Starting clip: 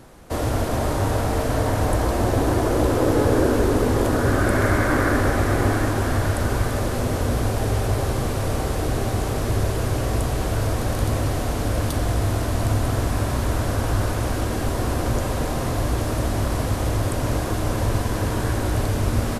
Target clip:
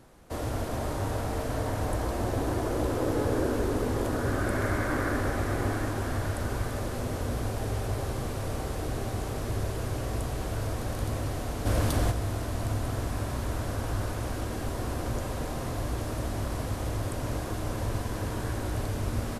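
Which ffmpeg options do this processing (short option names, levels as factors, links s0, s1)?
-filter_complex "[0:a]asplit=3[s0][s1][s2];[s0]afade=t=out:st=11.65:d=0.02[s3];[s1]acontrast=61,afade=t=in:st=11.65:d=0.02,afade=t=out:st=12.1:d=0.02[s4];[s2]afade=t=in:st=12.1:d=0.02[s5];[s3][s4][s5]amix=inputs=3:normalize=0,volume=0.355"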